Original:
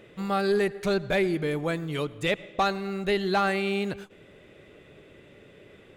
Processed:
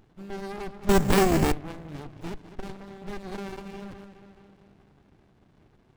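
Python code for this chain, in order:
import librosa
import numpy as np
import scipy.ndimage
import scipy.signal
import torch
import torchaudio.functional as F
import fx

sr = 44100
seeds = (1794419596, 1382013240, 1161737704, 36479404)

y = fx.echo_wet_lowpass(x, sr, ms=212, feedback_pct=61, hz=3100.0, wet_db=-13.5)
y = fx.resample_bad(y, sr, factor=6, down='none', up='zero_stuff', at=(0.89, 1.52))
y = fx.running_max(y, sr, window=65)
y = F.gain(torch.from_numpy(y), -5.5).numpy()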